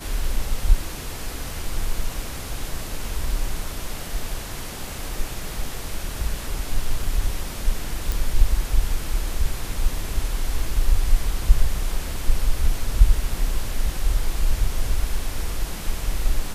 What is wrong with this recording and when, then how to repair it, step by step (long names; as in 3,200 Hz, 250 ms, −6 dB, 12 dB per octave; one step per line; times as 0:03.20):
0:08.12: click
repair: click removal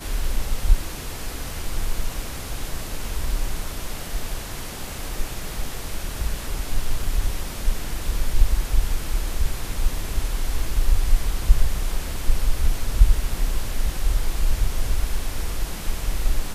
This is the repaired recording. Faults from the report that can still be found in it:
none of them is left